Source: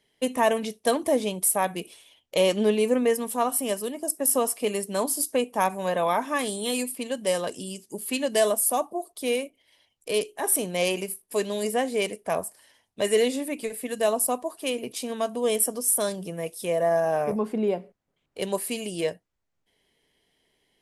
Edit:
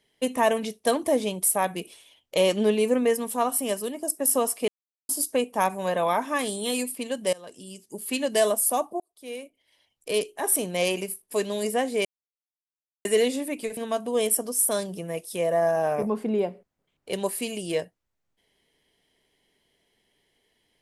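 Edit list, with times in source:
4.68–5.09 s: mute
7.33–8.14 s: fade in, from -22 dB
9.00–10.12 s: fade in
12.05–13.05 s: mute
13.77–15.06 s: delete

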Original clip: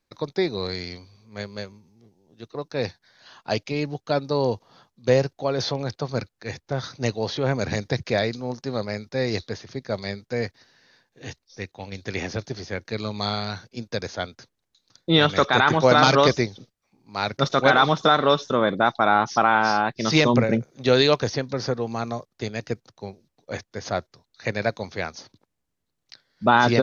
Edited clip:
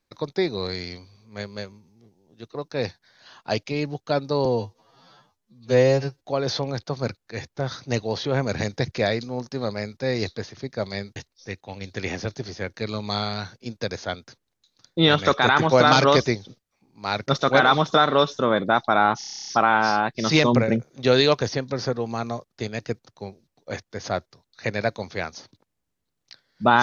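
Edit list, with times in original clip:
4.45–5.33 s: stretch 2×
10.28–11.27 s: delete
19.29 s: stutter 0.03 s, 11 plays

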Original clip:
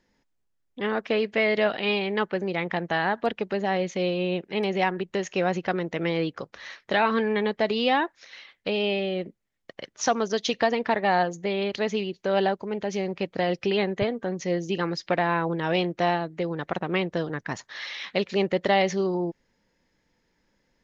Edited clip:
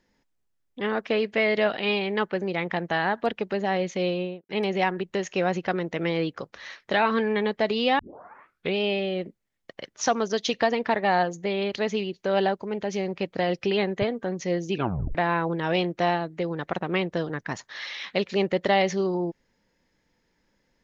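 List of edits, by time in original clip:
4.10–4.49 s: studio fade out
7.99 s: tape start 0.79 s
14.73 s: tape stop 0.42 s

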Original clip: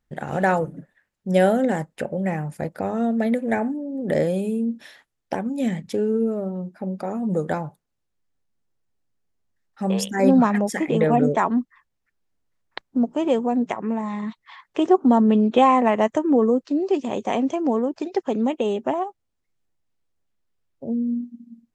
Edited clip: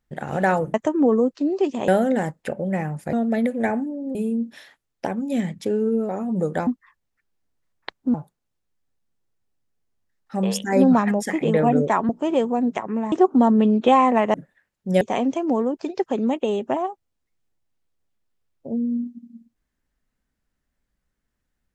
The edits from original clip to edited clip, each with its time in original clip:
0.74–1.41 s: swap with 16.04–17.18 s
2.66–3.01 s: delete
4.03–4.43 s: delete
6.37–7.03 s: delete
11.56–13.03 s: move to 7.61 s
14.06–14.82 s: delete

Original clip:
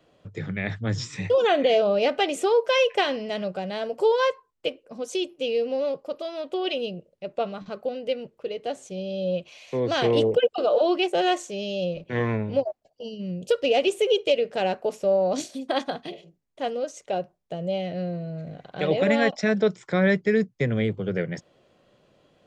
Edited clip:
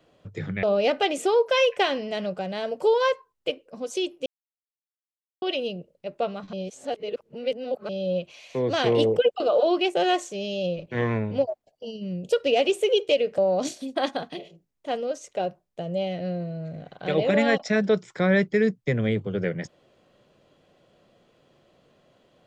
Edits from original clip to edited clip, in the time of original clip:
0.63–1.81 s: delete
5.44–6.60 s: mute
7.71–9.07 s: reverse
14.56–15.11 s: delete

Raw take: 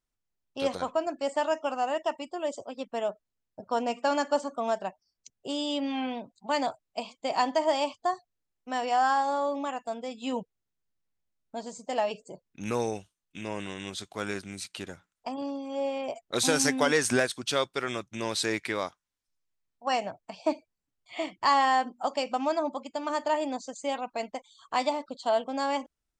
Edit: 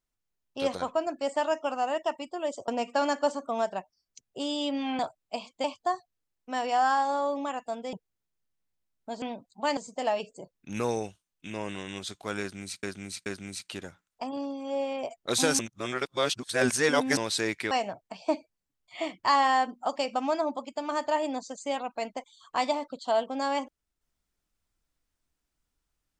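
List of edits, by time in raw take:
2.68–3.77 s: delete
6.08–6.63 s: move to 11.68 s
7.28–7.83 s: delete
10.12–10.39 s: delete
14.31–14.74 s: loop, 3 plays
16.64–18.22 s: reverse
18.76–19.89 s: delete

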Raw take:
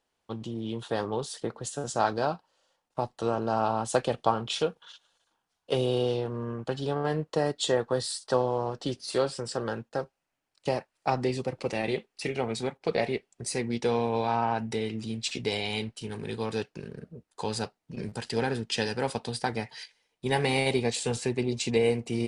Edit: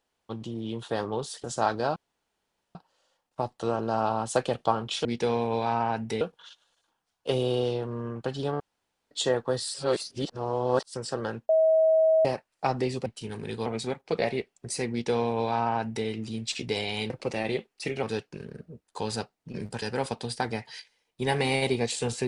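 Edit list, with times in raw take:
1.44–1.82 s: delete
2.34 s: insert room tone 0.79 s
7.03–7.54 s: room tone
8.17–9.37 s: reverse
9.92–10.68 s: bleep 640 Hz -17.5 dBFS
11.49–12.42 s: swap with 15.86–16.46 s
13.67–14.83 s: copy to 4.64 s
18.25–18.86 s: delete

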